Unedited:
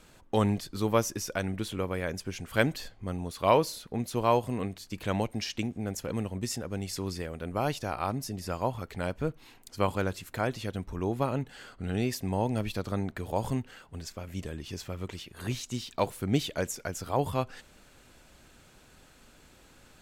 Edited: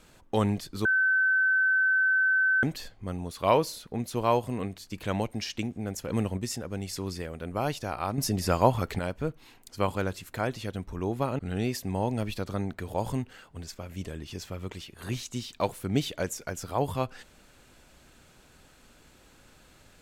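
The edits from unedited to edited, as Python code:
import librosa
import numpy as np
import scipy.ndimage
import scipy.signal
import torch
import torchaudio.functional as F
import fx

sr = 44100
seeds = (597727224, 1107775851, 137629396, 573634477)

y = fx.edit(x, sr, fx.bleep(start_s=0.85, length_s=1.78, hz=1530.0, db=-20.5),
    fx.clip_gain(start_s=6.12, length_s=0.25, db=4.5),
    fx.clip_gain(start_s=8.18, length_s=0.81, db=8.5),
    fx.cut(start_s=11.39, length_s=0.38), tone=tone)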